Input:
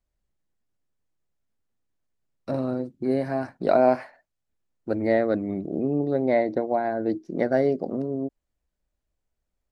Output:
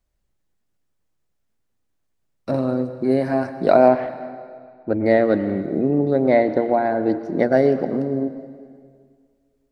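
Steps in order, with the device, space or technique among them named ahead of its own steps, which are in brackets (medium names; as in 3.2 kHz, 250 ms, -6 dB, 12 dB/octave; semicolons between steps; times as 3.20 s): 3.88–5.06 s: distance through air 300 m; saturated reverb return (on a send at -10.5 dB: reverberation RT60 2.0 s, pre-delay 96 ms + saturation -16.5 dBFS, distortion -18 dB); on the sum: trim +5.5 dB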